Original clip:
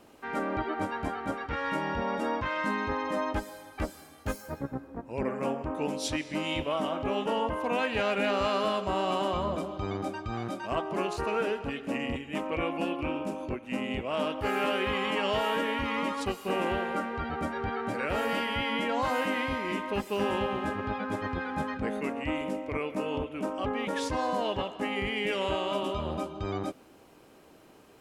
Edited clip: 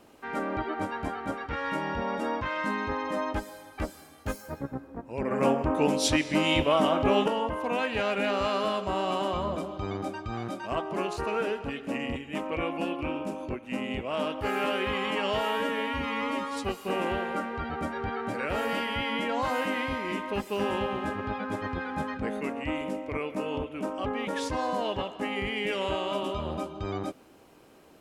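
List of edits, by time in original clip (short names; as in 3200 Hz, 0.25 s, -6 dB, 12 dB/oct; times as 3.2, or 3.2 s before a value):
5.31–7.28 gain +7 dB
15.49–16.29 stretch 1.5×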